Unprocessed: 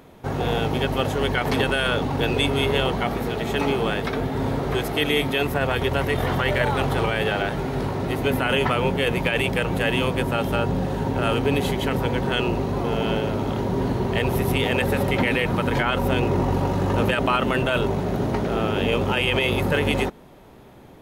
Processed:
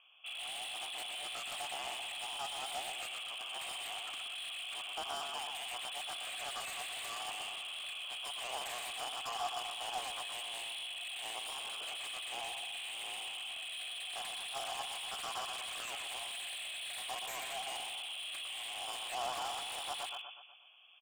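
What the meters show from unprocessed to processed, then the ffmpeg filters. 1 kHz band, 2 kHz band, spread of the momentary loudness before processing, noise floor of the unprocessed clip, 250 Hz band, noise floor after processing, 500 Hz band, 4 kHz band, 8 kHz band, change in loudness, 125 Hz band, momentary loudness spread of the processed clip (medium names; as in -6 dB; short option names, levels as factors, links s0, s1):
-16.0 dB, -17.0 dB, 4 LU, -46 dBFS, under -40 dB, -46 dBFS, -27.5 dB, -8.5 dB, -2.0 dB, -17.0 dB, under -40 dB, 2 LU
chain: -filter_complex "[0:a]lowpass=f=3000:t=q:w=0.5098,lowpass=f=3000:t=q:w=0.6013,lowpass=f=3000:t=q:w=0.9,lowpass=f=3000:t=q:w=2.563,afreqshift=-3500,lowshelf=f=490:g=-4.5,aecho=1:1:122|244|366|488|610|732:0.473|0.232|0.114|0.0557|0.0273|0.0134,asplit=2[s0][s1];[s1]volume=10.6,asoftclip=hard,volume=0.0944,volume=0.422[s2];[s0][s2]amix=inputs=2:normalize=0,asplit=3[s3][s4][s5];[s3]bandpass=f=730:t=q:w=8,volume=1[s6];[s4]bandpass=f=1090:t=q:w=8,volume=0.501[s7];[s5]bandpass=f=2440:t=q:w=8,volume=0.355[s8];[s6][s7][s8]amix=inputs=3:normalize=0,acrossover=split=1000[s9][s10];[s10]aeval=exprs='0.0178*(abs(mod(val(0)/0.0178+3,4)-2)-1)':c=same[s11];[s9][s11]amix=inputs=2:normalize=0,volume=0.668"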